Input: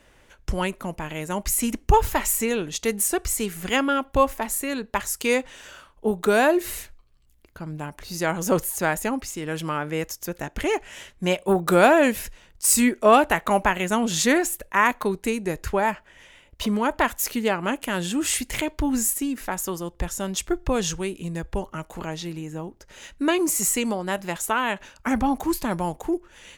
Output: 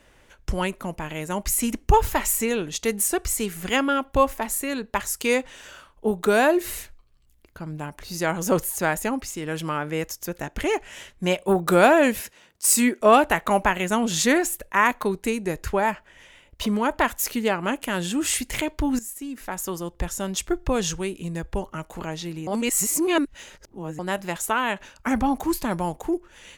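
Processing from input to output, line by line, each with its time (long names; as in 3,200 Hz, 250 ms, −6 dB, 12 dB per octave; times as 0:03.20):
0:12.20–0:13.01: high-pass filter 170 Hz
0:18.99–0:19.79: fade in, from −17 dB
0:22.47–0:23.99: reverse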